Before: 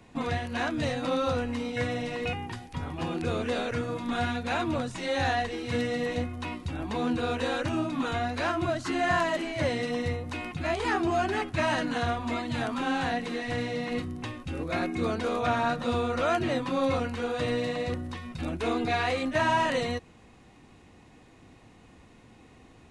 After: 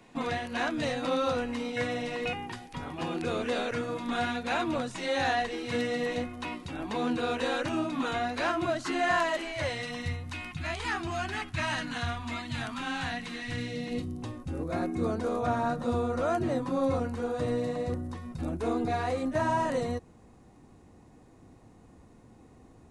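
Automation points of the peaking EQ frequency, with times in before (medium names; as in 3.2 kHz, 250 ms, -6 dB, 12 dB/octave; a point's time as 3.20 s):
peaking EQ -13 dB 1.7 oct
8.76 s 64 Hz
10.07 s 450 Hz
13.32 s 450 Hz
14.40 s 2.8 kHz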